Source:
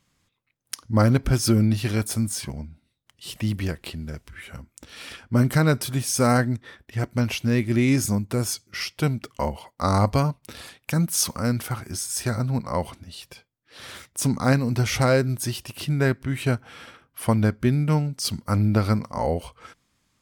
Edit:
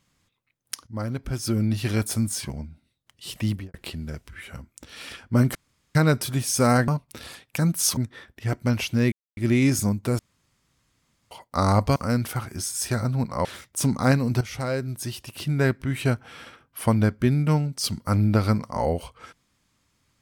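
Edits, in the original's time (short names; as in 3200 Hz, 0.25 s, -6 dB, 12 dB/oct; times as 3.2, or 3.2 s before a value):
0.87–1.92 fade in quadratic, from -12.5 dB
3.49–3.74 studio fade out
5.55 insert room tone 0.40 s
7.63 insert silence 0.25 s
8.45–9.57 room tone
10.22–11.31 move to 6.48
12.8–13.86 cut
14.82–16.11 fade in, from -13 dB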